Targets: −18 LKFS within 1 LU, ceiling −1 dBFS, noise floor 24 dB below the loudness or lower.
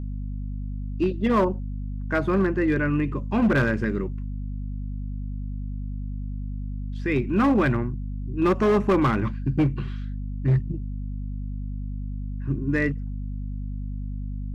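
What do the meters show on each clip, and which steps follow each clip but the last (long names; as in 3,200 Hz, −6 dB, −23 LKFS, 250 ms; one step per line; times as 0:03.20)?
share of clipped samples 1.4%; peaks flattened at −15.0 dBFS; mains hum 50 Hz; hum harmonics up to 250 Hz; level of the hum −28 dBFS; integrated loudness −26.5 LKFS; sample peak −15.0 dBFS; target loudness −18.0 LKFS
→ clipped peaks rebuilt −15 dBFS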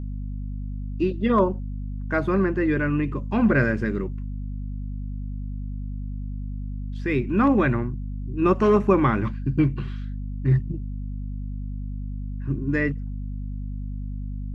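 share of clipped samples 0.0%; mains hum 50 Hz; hum harmonics up to 250 Hz; level of the hum −28 dBFS
→ mains-hum notches 50/100/150/200/250 Hz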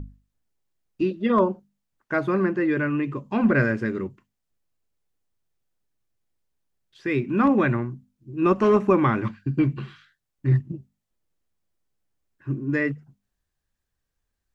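mains hum none found; integrated loudness −23.5 LKFS; sample peak −8.0 dBFS; target loudness −18.0 LKFS
→ level +5.5 dB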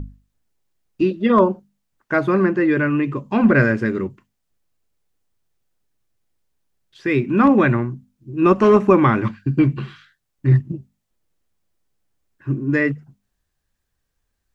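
integrated loudness −18.0 LKFS; sample peak −2.5 dBFS; background noise floor −75 dBFS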